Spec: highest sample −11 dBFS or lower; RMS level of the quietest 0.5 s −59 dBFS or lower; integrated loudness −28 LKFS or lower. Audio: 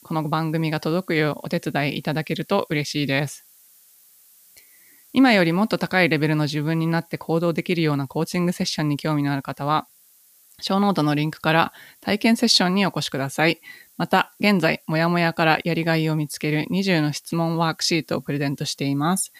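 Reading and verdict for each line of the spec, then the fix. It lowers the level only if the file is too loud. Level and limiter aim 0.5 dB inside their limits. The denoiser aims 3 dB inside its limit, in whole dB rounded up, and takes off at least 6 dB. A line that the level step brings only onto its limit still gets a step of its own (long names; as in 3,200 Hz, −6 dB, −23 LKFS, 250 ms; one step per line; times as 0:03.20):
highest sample −4.5 dBFS: out of spec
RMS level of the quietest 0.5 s −55 dBFS: out of spec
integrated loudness −22.0 LKFS: out of spec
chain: level −6.5 dB
brickwall limiter −11.5 dBFS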